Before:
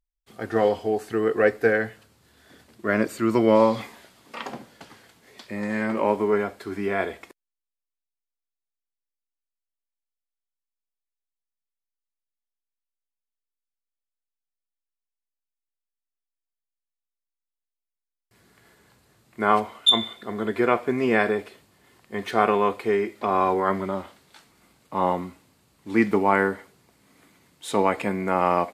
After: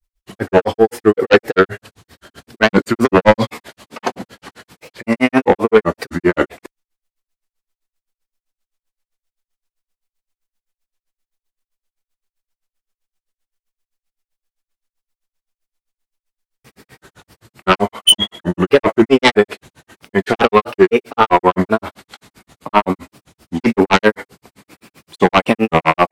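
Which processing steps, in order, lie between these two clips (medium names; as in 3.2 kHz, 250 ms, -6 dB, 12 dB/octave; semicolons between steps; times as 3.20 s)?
sine folder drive 10 dB, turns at -4.5 dBFS; tempo 1.1×; granulator 97 ms, grains 7.7 per s, spray 10 ms, pitch spread up and down by 3 st; trim +3.5 dB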